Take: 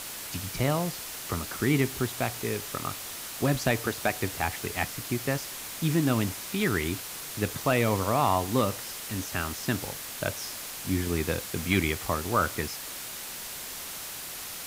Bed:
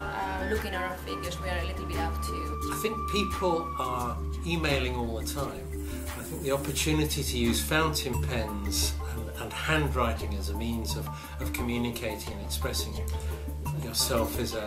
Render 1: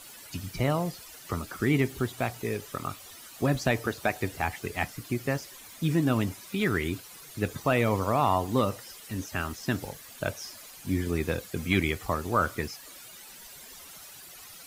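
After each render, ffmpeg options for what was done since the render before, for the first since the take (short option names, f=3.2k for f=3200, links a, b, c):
-af "afftdn=nr=13:nf=-39"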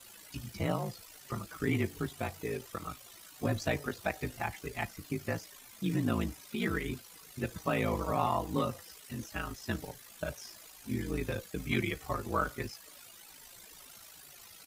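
-filter_complex "[0:a]aeval=exprs='val(0)*sin(2*PI*27*n/s)':c=same,asplit=2[a][b];[b]adelay=5.2,afreqshift=-2.3[c];[a][c]amix=inputs=2:normalize=1"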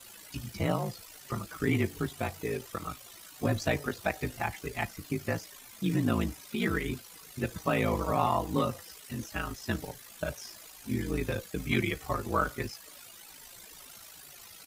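-af "volume=3dB"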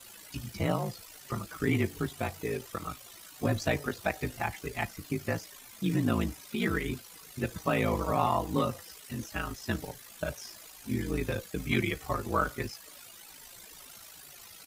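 -af anull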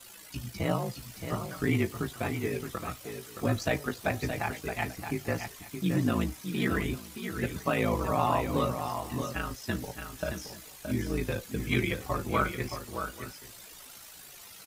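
-filter_complex "[0:a]asplit=2[a][b];[b]adelay=16,volume=-12dB[c];[a][c]amix=inputs=2:normalize=0,aecho=1:1:621|838:0.422|0.106"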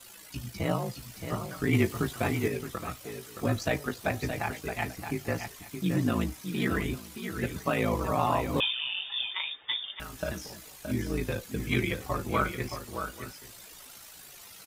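-filter_complex "[0:a]asettb=1/sr,asplit=3[a][b][c];[a]atrim=end=8.604[d];[b]atrim=start=8.6:end=10,asetpts=PTS-STARTPTS,afade=t=in:d=0.004:c=qsin,afade=t=out:st=1.396:d=0.004:c=qsin,lowpass=f=3.1k:t=q:w=0.5098,lowpass=f=3.1k:t=q:w=0.6013,lowpass=f=3.1k:t=q:w=0.9,lowpass=f=3.1k:t=q:w=2.563,afreqshift=-3700[e];[c]atrim=start=9.996[f];[d][e]acrossfade=d=0.004:c1=hsin:c2=qsin[g];[g][f]acrossfade=d=0.004:c1=qsin:c2=hsin,asplit=3[h][i][j];[h]atrim=end=1.732[k];[i]atrim=start=1.728:end=2.482,asetpts=PTS-STARTPTS,volume=3.5dB[l];[j]atrim=start=2.478[m];[k][l]acrossfade=d=0.004:c1=hsin:c2=hsin[n];[n][m]acrossfade=d=0.004:c1=hsin:c2=hsin"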